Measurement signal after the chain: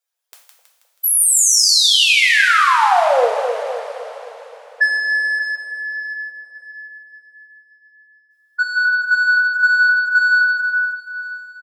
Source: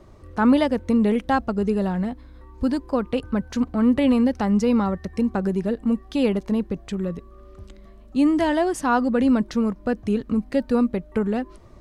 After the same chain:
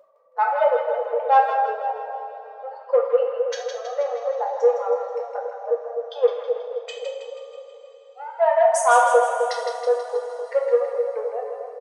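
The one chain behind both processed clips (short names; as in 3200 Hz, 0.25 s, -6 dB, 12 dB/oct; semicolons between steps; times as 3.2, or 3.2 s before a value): spectral contrast raised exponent 2.1; speakerphone echo 0.11 s, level -29 dB; in parallel at -3 dB: soft clip -19.5 dBFS; on the sum: brick-wall FIR high-pass 450 Hz; on a send: split-band echo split 800 Hz, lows 0.259 s, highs 0.161 s, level -6 dB; on the sum: two-slope reverb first 0.54 s, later 4.3 s, from -17 dB, DRR -1 dB; gain +1.5 dB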